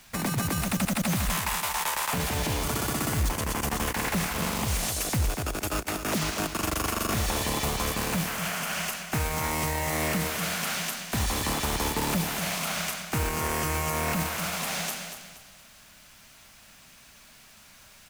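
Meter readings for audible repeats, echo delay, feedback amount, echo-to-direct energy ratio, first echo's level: 3, 237 ms, 33%, −8.0 dB, −8.5 dB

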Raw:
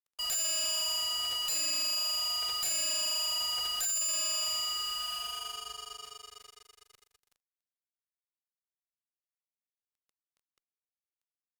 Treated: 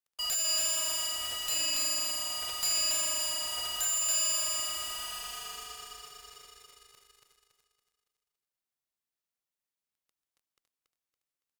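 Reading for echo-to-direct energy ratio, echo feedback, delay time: −2.0 dB, 41%, 281 ms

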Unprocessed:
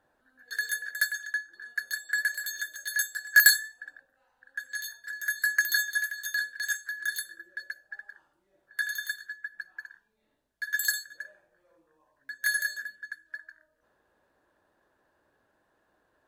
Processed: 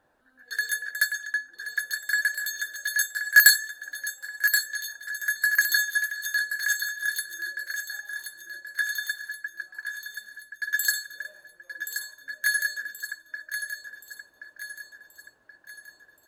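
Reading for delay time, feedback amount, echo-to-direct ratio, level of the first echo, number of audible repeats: 1,077 ms, 47%, −7.0 dB, −8.0 dB, 5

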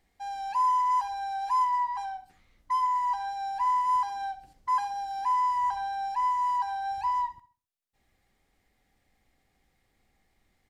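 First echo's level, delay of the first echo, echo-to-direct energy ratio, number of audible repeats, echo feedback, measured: −16.0 dB, 65 ms, −15.5 dB, 3, 40%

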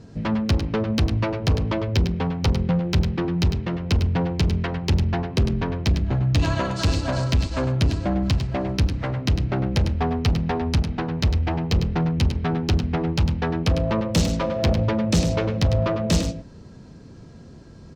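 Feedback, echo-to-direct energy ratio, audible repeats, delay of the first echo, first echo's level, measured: repeats not evenly spaced, −8.5 dB, 1, 102 ms, −8.5 dB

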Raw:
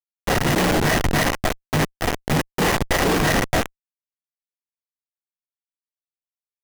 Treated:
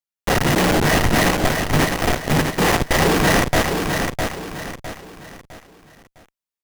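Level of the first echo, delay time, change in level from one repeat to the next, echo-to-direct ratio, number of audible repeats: −5.0 dB, 657 ms, −9.0 dB, −4.5 dB, 4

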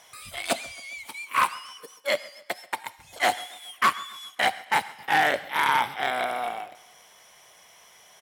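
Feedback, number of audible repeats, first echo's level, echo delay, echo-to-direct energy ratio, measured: 51%, 3, −21.5 dB, 135 ms, −20.0 dB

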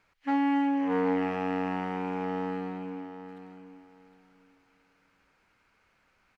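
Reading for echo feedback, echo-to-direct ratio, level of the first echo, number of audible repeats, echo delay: 21%, −11.0 dB, −11.0 dB, 2, 761 ms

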